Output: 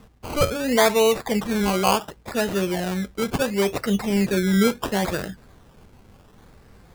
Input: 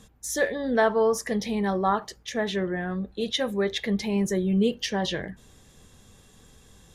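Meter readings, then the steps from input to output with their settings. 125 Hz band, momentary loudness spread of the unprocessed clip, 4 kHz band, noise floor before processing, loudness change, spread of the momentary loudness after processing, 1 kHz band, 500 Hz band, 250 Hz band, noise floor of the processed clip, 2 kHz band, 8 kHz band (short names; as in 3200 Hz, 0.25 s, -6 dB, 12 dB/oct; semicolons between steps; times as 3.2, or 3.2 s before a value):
+4.5 dB, 8 LU, +3.5 dB, -56 dBFS, +4.0 dB, 8 LU, +4.0 dB, +3.5 dB, +4.0 dB, -52 dBFS, +3.5 dB, +5.0 dB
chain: high shelf 8700 Hz -10 dB; decimation with a swept rate 19×, swing 60% 0.71 Hz; gain +4 dB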